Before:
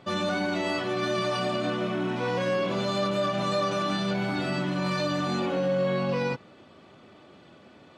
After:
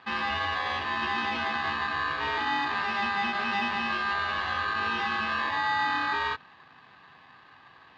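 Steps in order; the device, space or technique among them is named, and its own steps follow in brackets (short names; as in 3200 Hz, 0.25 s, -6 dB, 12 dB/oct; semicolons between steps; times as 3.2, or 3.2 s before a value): ring modulator pedal into a guitar cabinet (polarity switched at an audio rate 1400 Hz; speaker cabinet 98–3400 Hz, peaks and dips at 140 Hz +8 dB, 220 Hz -5 dB, 570 Hz -7 dB, 2100 Hz -7 dB); gain +1 dB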